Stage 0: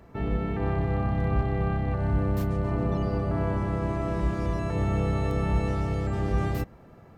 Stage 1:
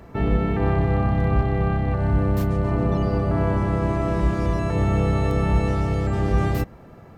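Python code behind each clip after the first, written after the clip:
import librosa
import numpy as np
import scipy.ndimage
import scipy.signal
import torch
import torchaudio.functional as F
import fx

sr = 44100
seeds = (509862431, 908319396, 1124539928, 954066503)

y = fx.rider(x, sr, range_db=10, speed_s=2.0)
y = y * librosa.db_to_amplitude(5.5)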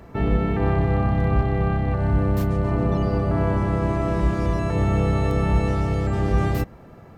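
y = x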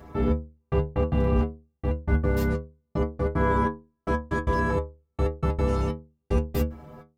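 y = fx.step_gate(x, sr, bpm=188, pattern='xxxx.....x..x.', floor_db=-60.0, edge_ms=4.5)
y = fx.stiff_resonator(y, sr, f0_hz=74.0, decay_s=0.37, stiffness=0.008)
y = y * librosa.db_to_amplitude(9.0)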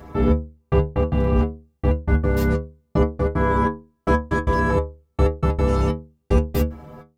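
y = fx.rider(x, sr, range_db=4, speed_s=0.5)
y = y * librosa.db_to_amplitude(5.5)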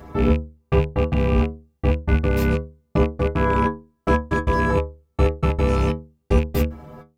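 y = fx.rattle_buzz(x, sr, strikes_db=-19.0, level_db=-22.0)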